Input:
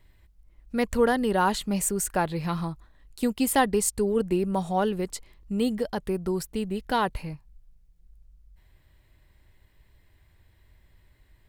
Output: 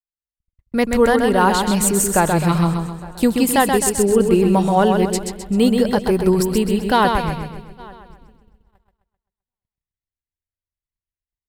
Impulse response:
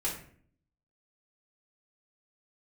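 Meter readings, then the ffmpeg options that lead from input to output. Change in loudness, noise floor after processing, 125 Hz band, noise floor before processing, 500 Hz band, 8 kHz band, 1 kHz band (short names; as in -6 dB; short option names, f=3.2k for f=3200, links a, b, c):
+10.0 dB, under -85 dBFS, +12.0 dB, -61 dBFS, +10.0 dB, +9.0 dB, +9.5 dB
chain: -filter_complex "[0:a]dynaudnorm=f=220:g=3:m=13dB,asplit=2[a][b];[b]adelay=855,lowpass=f=4.7k:p=1,volume=-23dB,asplit=2[c][d];[d]adelay=855,lowpass=f=4.7k:p=1,volume=0.49,asplit=2[e][f];[f]adelay=855,lowpass=f=4.7k:p=1,volume=0.49[g];[c][e][g]amix=inputs=3:normalize=0[h];[a][h]amix=inputs=2:normalize=0,agate=range=-51dB:threshold=-35dB:ratio=16:detection=peak,asplit=2[i][j];[j]aecho=0:1:130|260|390|520|650|780:0.562|0.253|0.114|0.0512|0.0231|0.0104[k];[i][k]amix=inputs=2:normalize=0,volume=-1.5dB"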